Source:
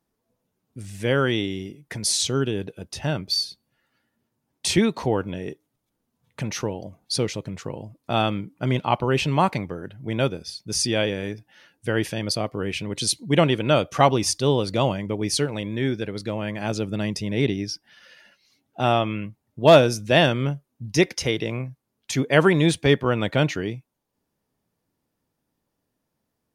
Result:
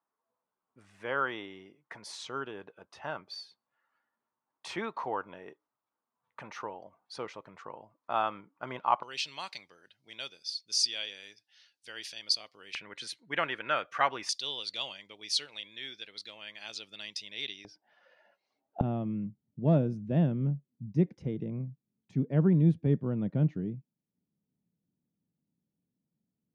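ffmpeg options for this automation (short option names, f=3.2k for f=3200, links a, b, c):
-af "asetnsamples=n=441:p=0,asendcmd='9.03 bandpass f 4500;12.75 bandpass f 1600;14.29 bandpass f 3800;17.65 bandpass f 710;18.81 bandpass f 180',bandpass=f=1.1k:t=q:w=2.4:csg=0"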